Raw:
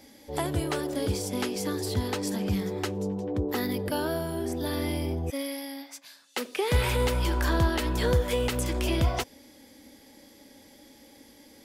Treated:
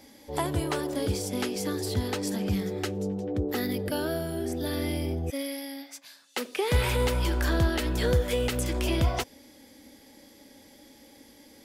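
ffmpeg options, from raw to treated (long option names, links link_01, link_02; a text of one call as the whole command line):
ffmpeg -i in.wav -af "asetnsamples=nb_out_samples=441:pad=0,asendcmd='1.02 equalizer g -4.5;2.62 equalizer g -11;5.95 equalizer g -1;7.28 equalizer g -7.5;8.73 equalizer g -0.5',equalizer=frequency=1000:width_type=o:width=0.28:gain=4" out.wav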